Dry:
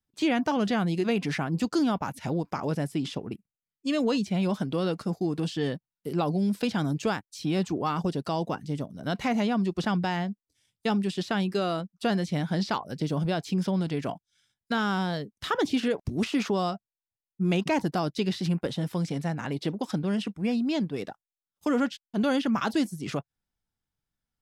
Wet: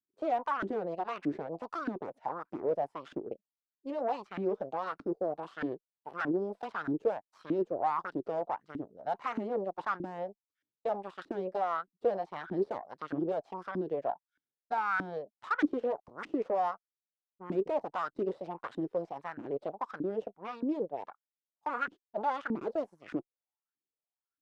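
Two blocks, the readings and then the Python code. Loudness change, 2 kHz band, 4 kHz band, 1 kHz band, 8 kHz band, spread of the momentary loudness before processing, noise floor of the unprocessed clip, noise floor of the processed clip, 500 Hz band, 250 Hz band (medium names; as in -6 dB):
-7.0 dB, -6.0 dB, -20.0 dB, -1.5 dB, under -20 dB, 7 LU, under -85 dBFS, under -85 dBFS, -3.0 dB, -11.0 dB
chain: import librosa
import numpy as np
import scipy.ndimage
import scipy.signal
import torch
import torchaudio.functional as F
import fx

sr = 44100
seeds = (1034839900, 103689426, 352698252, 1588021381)

y = fx.cheby_harmonics(x, sr, harmonics=(5, 6, 7), levels_db=(-11, -8, -14), full_scale_db=-14.5)
y = fx.filter_lfo_bandpass(y, sr, shape='saw_up', hz=1.6, low_hz=280.0, high_hz=1600.0, q=5.7)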